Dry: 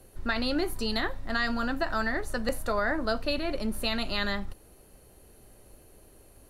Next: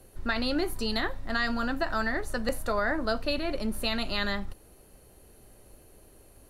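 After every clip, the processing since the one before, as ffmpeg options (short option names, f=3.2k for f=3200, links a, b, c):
-af anull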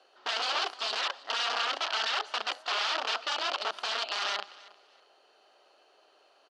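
-af "aeval=exprs='(mod(17.8*val(0)+1,2)-1)/17.8':c=same,highpass=f=490:w=0.5412,highpass=f=490:w=1.3066,equalizer=f=500:t=q:w=4:g=-6,equalizer=f=740:t=q:w=4:g=3,equalizer=f=1.3k:t=q:w=4:g=6,equalizer=f=2.1k:t=q:w=4:g=-5,equalizer=f=3k:t=q:w=4:g=7,equalizer=f=4.6k:t=q:w=4:g=4,lowpass=f=5.1k:w=0.5412,lowpass=f=5.1k:w=1.3066,aecho=1:1:318|636:0.0891|0.0223"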